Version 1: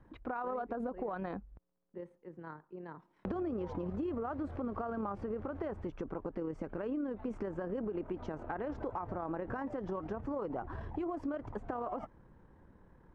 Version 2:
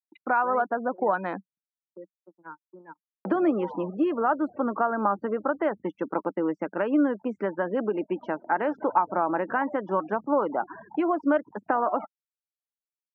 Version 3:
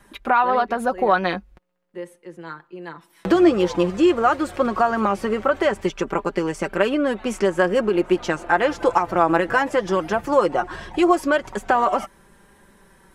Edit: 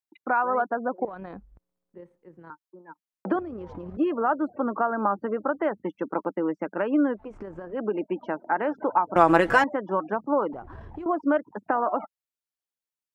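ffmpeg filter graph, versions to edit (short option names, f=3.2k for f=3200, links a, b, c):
-filter_complex "[0:a]asplit=4[a][b][c][d];[1:a]asplit=6[e][f][g][h][i][j];[e]atrim=end=1.052[k];[a]atrim=start=1.048:end=2.502[l];[f]atrim=start=2.498:end=3.392[m];[b]atrim=start=3.388:end=3.972[n];[g]atrim=start=3.968:end=7.36[o];[c]atrim=start=7.12:end=7.86[p];[h]atrim=start=7.62:end=9.162[q];[2:a]atrim=start=9.158:end=9.642[r];[i]atrim=start=9.638:end=10.532[s];[d]atrim=start=10.528:end=11.062[t];[j]atrim=start=11.058[u];[k][l]acrossfade=d=0.004:c1=hsin:c2=hsin[v];[v][m]acrossfade=d=0.004:c1=hsin:c2=hsin[w];[w][n]acrossfade=d=0.004:c1=hsin:c2=hsin[x];[x][o]acrossfade=d=0.004:c1=hsin:c2=hsin[y];[y][p]acrossfade=d=0.24:c1=tri:c2=tri[z];[z][q]acrossfade=d=0.24:c1=tri:c2=tri[aa];[aa][r]acrossfade=d=0.004:c1=hsin:c2=hsin[ab];[ab][s]acrossfade=d=0.004:c1=hsin:c2=hsin[ac];[ac][t]acrossfade=d=0.004:c1=hsin:c2=hsin[ad];[ad][u]acrossfade=d=0.004:c1=hsin:c2=hsin"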